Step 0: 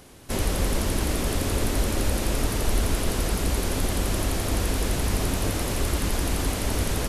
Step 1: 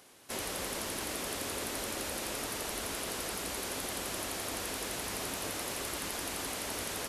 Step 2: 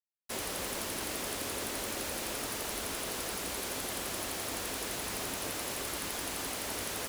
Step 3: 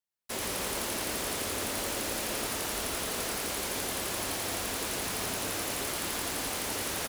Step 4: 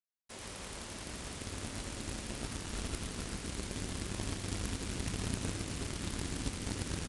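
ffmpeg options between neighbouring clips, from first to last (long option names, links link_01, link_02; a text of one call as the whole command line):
ffmpeg -i in.wav -af "highpass=frequency=650:poles=1,volume=-5.5dB" out.wav
ffmpeg -i in.wav -af "acrusher=bits=6:mix=0:aa=0.000001" out.wav
ffmpeg -i in.wav -af "aecho=1:1:110:0.631,volume=2dB" out.wav
ffmpeg -i in.wav -af "asubboost=boost=8.5:cutoff=220,aeval=exprs='0.158*(cos(1*acos(clip(val(0)/0.158,-1,1)))-cos(1*PI/2))+0.0398*(cos(3*acos(clip(val(0)/0.158,-1,1)))-cos(3*PI/2))':channel_layout=same,aresample=22050,aresample=44100,volume=-1dB" out.wav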